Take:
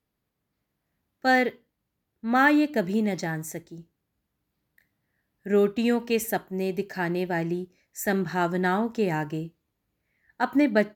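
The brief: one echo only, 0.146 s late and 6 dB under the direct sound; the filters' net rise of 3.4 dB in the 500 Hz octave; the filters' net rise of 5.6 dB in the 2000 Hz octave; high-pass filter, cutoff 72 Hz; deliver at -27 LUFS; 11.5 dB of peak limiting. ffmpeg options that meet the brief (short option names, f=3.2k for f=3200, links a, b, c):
-af "highpass=72,equalizer=f=500:t=o:g=4,equalizer=f=2k:t=o:g=6.5,alimiter=limit=-15.5dB:level=0:latency=1,aecho=1:1:146:0.501,volume=-0.5dB"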